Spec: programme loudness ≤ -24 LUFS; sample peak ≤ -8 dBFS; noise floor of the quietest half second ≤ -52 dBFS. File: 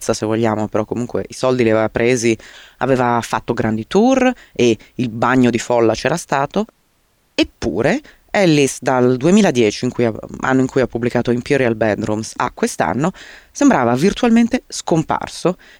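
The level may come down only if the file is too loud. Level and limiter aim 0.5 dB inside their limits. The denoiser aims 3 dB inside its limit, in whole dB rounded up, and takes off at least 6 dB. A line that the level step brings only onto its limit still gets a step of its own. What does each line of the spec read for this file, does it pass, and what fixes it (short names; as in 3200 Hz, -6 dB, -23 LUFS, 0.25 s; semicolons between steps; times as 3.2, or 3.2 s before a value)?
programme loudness -16.5 LUFS: fail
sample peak -3.0 dBFS: fail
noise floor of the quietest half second -60 dBFS: OK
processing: gain -8 dB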